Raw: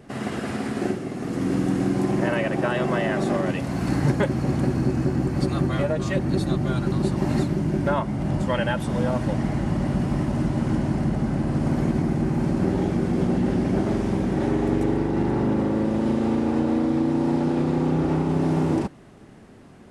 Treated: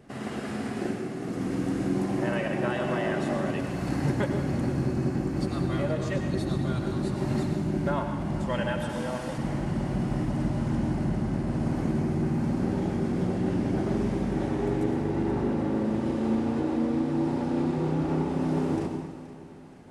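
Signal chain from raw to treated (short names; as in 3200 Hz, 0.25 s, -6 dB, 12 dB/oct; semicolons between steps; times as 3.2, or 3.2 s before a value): 8.89–9.38 tilt +2 dB/oct; split-band echo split 360 Hz, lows 0.354 s, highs 0.474 s, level -16 dB; plate-style reverb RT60 1.1 s, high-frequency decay 1×, pre-delay 80 ms, DRR 5 dB; gain -6 dB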